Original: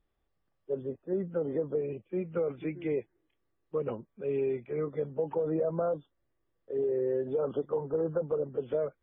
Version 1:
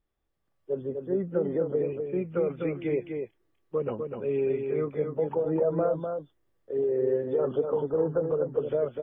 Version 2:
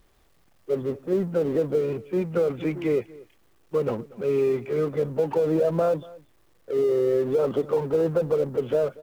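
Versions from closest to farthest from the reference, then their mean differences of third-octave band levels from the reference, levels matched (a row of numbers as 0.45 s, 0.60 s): 1, 2; 2.0 dB, 5.0 dB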